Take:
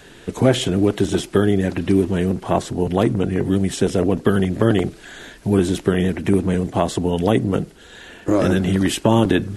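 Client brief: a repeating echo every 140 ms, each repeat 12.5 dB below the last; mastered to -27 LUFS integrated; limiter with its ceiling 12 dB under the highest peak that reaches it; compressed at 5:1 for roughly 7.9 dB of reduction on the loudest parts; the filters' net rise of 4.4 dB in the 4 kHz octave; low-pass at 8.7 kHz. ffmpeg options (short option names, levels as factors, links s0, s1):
-af "lowpass=8700,equalizer=f=4000:t=o:g=6,acompressor=threshold=0.112:ratio=5,alimiter=limit=0.126:level=0:latency=1,aecho=1:1:140|280|420:0.237|0.0569|0.0137,volume=1.12"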